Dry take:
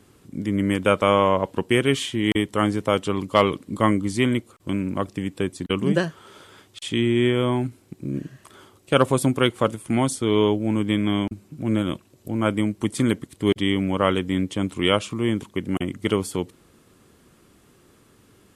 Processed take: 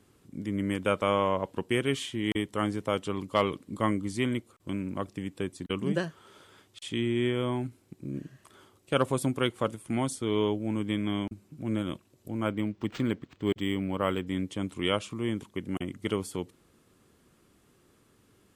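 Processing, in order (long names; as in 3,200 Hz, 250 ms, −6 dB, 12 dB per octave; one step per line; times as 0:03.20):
0:12.46–0:14.27: linearly interpolated sample-rate reduction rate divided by 4×
level −8 dB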